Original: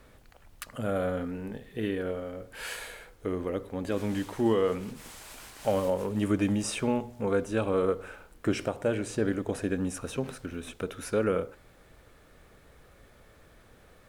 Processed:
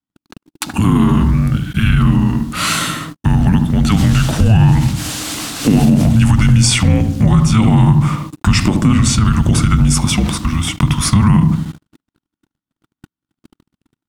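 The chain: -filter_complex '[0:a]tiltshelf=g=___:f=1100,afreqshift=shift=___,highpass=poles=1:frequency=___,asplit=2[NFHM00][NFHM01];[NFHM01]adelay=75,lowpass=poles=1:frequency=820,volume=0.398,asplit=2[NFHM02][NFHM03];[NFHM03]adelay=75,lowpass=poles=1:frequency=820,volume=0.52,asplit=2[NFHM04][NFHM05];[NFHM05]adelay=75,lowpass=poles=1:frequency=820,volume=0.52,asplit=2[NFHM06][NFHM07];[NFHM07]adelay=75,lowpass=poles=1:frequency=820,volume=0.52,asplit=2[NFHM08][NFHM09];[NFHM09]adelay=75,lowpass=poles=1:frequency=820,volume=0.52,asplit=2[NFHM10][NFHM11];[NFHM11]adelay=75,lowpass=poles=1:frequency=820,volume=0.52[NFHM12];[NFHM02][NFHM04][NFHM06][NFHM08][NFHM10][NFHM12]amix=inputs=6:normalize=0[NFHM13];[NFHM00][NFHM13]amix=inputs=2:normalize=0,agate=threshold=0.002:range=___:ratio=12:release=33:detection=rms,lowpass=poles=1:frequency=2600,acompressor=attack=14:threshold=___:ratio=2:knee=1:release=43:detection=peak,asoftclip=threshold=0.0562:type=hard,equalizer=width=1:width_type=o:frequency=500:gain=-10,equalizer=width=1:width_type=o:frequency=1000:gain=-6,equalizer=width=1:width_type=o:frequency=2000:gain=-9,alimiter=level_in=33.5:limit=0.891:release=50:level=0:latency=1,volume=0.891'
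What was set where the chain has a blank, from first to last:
-4.5, -330, 85, 0.00141, 0.01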